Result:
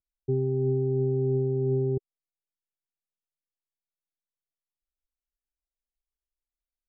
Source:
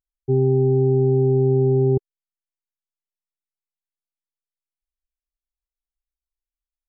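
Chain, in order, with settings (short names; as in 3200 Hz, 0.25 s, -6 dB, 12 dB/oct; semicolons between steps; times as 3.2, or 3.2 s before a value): steep low-pass 740 Hz 48 dB/oct; limiter -16.5 dBFS, peak gain reduction 7 dB; gain -3 dB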